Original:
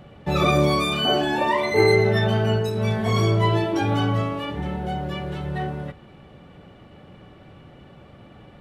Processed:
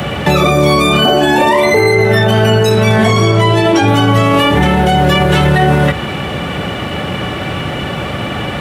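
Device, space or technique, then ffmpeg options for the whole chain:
mastering chain: -filter_complex "[0:a]asettb=1/sr,asplit=3[a][b][c];[a]atrim=end=2.954[d];[b]atrim=start=2.95:end=3.88,asetpts=PTS-STARTPTS,afade=t=in:d=0.004:c=qsin,afade=t=out:st=0.926:d=0.004:c=qsin,lowpass=9.8k[e];[c]atrim=start=3.876[f];[d][e]acrossfade=d=0.004:c1=hsin:c2=qsin[g];[g][f]acrossfade=d=0.004:c1=qsin:c2=hsin,highpass=f=51:w=0.5412,highpass=f=51:w=1.3066,equalizer=f=4.4k:t=o:w=0.77:g=-4,acrossover=split=100|760|1800|6600[h][i][j][k][l];[h]acompressor=threshold=-37dB:ratio=4[m];[i]acompressor=threshold=-23dB:ratio=4[n];[j]acompressor=threshold=-39dB:ratio=4[o];[k]acompressor=threshold=-44dB:ratio=4[p];[l]acompressor=threshold=-58dB:ratio=4[q];[m][n][o][p][q]amix=inputs=5:normalize=0,acompressor=threshold=-29dB:ratio=3,tiltshelf=f=1.2k:g=-5.5,asoftclip=type=hard:threshold=-25dB,alimiter=level_in=32dB:limit=-1dB:release=50:level=0:latency=1,volume=-1dB"

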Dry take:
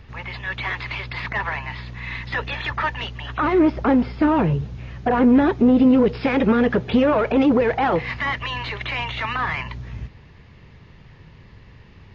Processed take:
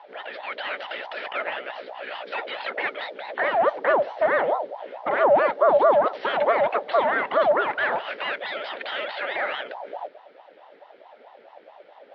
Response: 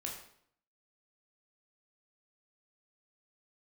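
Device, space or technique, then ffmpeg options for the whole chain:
voice changer toy: -af "aeval=exprs='val(0)*sin(2*PI*620*n/s+620*0.5/4.6*sin(2*PI*4.6*n/s))':c=same,highpass=540,equalizer=f=580:t=q:w=4:g=8,equalizer=f=1.1k:t=q:w=4:g=-5,equalizer=f=1.8k:t=q:w=4:g=3,equalizer=f=2.6k:t=q:w=4:g=-5,lowpass=f=3.9k:w=0.5412,lowpass=f=3.9k:w=1.3066"

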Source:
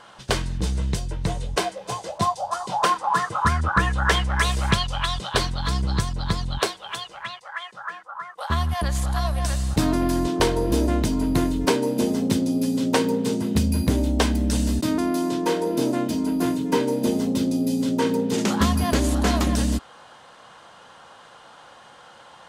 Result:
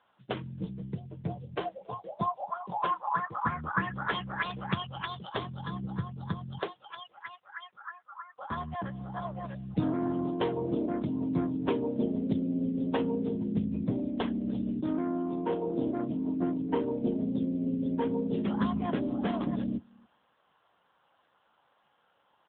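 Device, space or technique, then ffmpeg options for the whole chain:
mobile call with aggressive noise cancelling: -filter_complex "[0:a]asplit=3[a][b][c];[a]afade=t=out:st=13.15:d=0.02[d];[b]highpass=67,afade=t=in:st=13.15:d=0.02,afade=t=out:st=13.6:d=0.02[e];[c]afade=t=in:st=13.6:d=0.02[f];[d][e][f]amix=inputs=3:normalize=0,highpass=f=100:w=0.5412,highpass=f=100:w=1.3066,equalizer=f=170:t=o:w=0.41:g=3,aecho=1:1:274|548:0.075|0.0165,afftdn=nr=13:nf=-30,volume=-7.5dB" -ar 8000 -c:a libopencore_amrnb -b:a 7950

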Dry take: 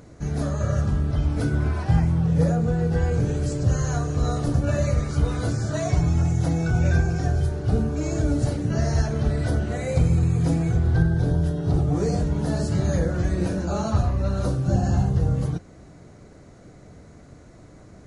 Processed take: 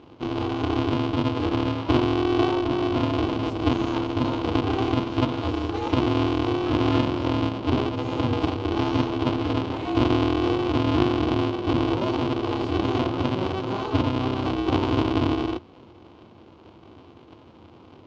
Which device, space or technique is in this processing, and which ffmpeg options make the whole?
ring modulator pedal into a guitar cabinet: -af "aeval=exprs='val(0)*sgn(sin(2*PI*190*n/s))':c=same,highpass=85,equalizer=f=86:t=q:w=4:g=8,equalizer=f=210:t=q:w=4:g=5,equalizer=f=340:t=q:w=4:g=6,equalizer=f=1k:t=q:w=4:g=6,equalizer=f=1.8k:t=q:w=4:g=-9,equalizer=f=3k:t=q:w=4:g=6,lowpass=f=4.4k:w=0.5412,lowpass=f=4.4k:w=1.3066,volume=-4dB"

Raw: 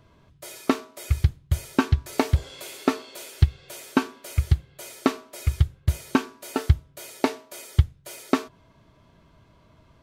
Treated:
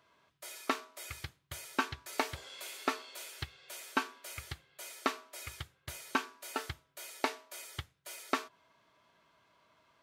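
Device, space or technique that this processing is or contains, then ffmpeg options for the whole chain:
filter by subtraction: -filter_complex "[0:a]asplit=2[a][b];[b]lowpass=1.4k,volume=-1[c];[a][c]amix=inputs=2:normalize=0,volume=-6dB"

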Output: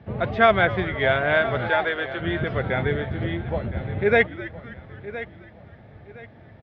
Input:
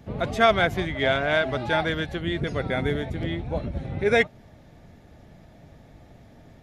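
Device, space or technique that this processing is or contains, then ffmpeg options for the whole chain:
frequency-shifting delay pedal into a guitar cabinet: -filter_complex "[0:a]bandreject=f=6.6k:w=15,asettb=1/sr,asplit=3[a][b][c];[a]atrim=end=1.684[d];[b]atrim=start=1.68:end=2.2,asetpts=PTS-STARTPTS,afade=t=in:d=0.004:c=qsin,afade=t=out:st=0.516:d=0.004:c=qsin,highpass=f=350:w=0.5412,highpass=f=350:w=1.3066[e];[c]atrim=start=2.196[f];[d][e]acrossfade=d=0.004:c1=hsin:c2=qsin[g];[g][f]acrossfade=d=0.004:c1=qsin:c2=hsin,asplit=5[h][i][j][k][l];[i]adelay=257,afreqshift=-120,volume=-17dB[m];[j]adelay=514,afreqshift=-240,volume=-23.9dB[n];[k]adelay=771,afreqshift=-360,volume=-30.9dB[o];[l]adelay=1028,afreqshift=-480,volume=-37.8dB[p];[h][m][n][o][p]amix=inputs=5:normalize=0,bass=f=250:g=6,treble=f=4k:g=-13,highpass=100,equalizer=f=160:t=q:w=4:g=-8,equalizer=f=270:t=q:w=4:g=-9,equalizer=f=1.7k:t=q:w=4:g=3,lowpass=f=4.6k:w=0.5412,lowpass=f=4.6k:w=1.3066,aecho=1:1:1016|2032|3048:0.178|0.0516|0.015,volume=2dB"

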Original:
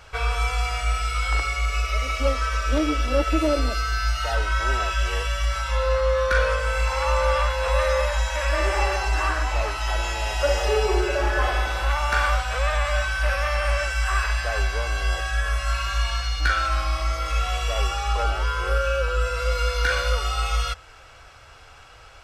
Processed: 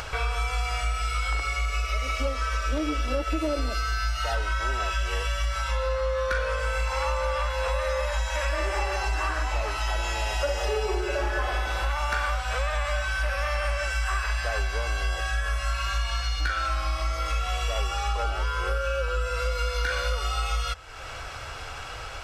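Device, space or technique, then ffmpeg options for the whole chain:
upward and downward compression: -af "acompressor=mode=upward:threshold=-26dB:ratio=2.5,acompressor=threshold=-23dB:ratio=6"

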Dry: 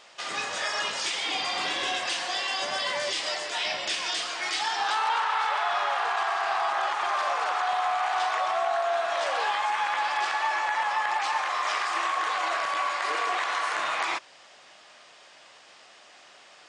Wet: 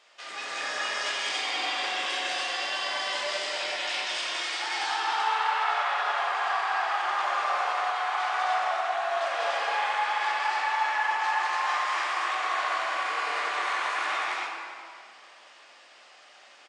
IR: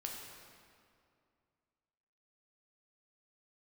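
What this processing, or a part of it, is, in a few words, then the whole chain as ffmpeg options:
stadium PA: -filter_complex "[0:a]highpass=240,equalizer=f=2k:t=o:w=1.5:g=3.5,aecho=1:1:195.3|288.6:0.891|1[a];[1:a]atrim=start_sample=2205[b];[a][b]afir=irnorm=-1:irlink=0,volume=-6dB"

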